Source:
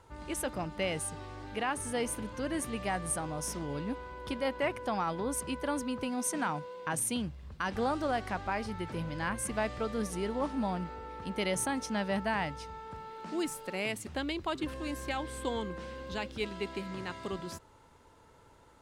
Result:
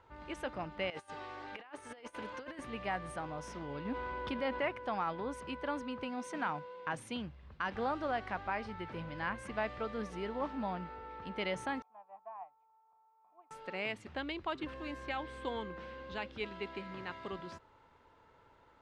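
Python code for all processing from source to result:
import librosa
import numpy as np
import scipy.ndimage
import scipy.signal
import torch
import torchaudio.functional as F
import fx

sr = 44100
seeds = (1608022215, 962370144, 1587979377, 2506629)

y = fx.chain(x, sr, fx.highpass(hz=54.0, slope=12),
    fx.bass_treble(bass_db=-12, treble_db=3),
    fx.over_compress(threshold_db=-40.0, ratio=-0.5), at=(0.9, 2.59))
y = fx.chain(y, sr, fx.peak_eq(hz=250.0, db=4.5, octaves=0.24),
    fx.env_flatten(amount_pct=50), at=(3.85, 4.62))
y = fx.chain(y, sr, fx.formant_cascade(vowel='a'),
    fx.tilt_eq(slope=3.5),
    fx.upward_expand(threshold_db=-55.0, expansion=1.5), at=(11.82, 13.51))
y = scipy.signal.sosfilt(scipy.signal.butter(2, 3000.0, 'lowpass', fs=sr, output='sos'), y)
y = fx.low_shelf(y, sr, hz=490.0, db=-7.0)
y = y * 10.0 ** (-1.0 / 20.0)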